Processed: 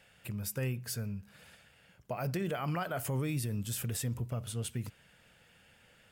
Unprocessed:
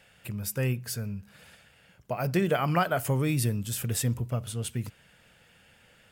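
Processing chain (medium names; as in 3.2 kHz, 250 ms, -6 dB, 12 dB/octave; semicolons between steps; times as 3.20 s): peak limiter -23 dBFS, peak gain reduction 8.5 dB; trim -3.5 dB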